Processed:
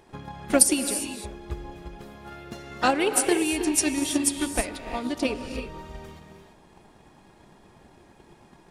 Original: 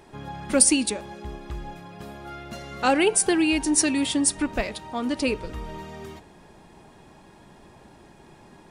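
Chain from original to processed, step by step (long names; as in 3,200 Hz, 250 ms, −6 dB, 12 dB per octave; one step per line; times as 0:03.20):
reverb whose tail is shaped and stops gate 370 ms rising, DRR 5.5 dB
pitch-shifted copies added +4 semitones −12 dB
transient designer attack +8 dB, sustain +1 dB
level −5.5 dB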